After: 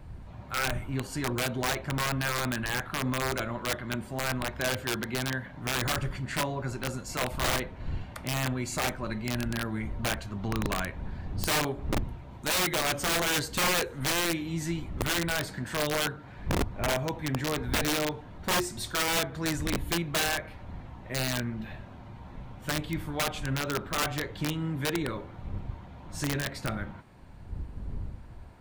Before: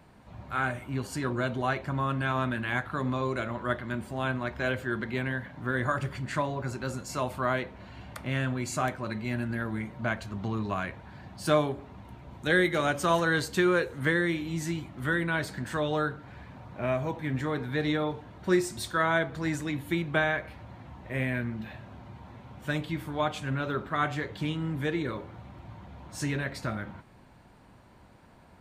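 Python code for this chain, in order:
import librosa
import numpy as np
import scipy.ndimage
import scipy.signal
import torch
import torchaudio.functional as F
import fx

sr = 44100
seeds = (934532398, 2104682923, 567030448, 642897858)

y = fx.dmg_wind(x, sr, seeds[0], corner_hz=84.0, level_db=-39.0)
y = (np.mod(10.0 ** (21.0 / 20.0) * y + 1.0, 2.0) - 1.0) / 10.0 ** (21.0 / 20.0)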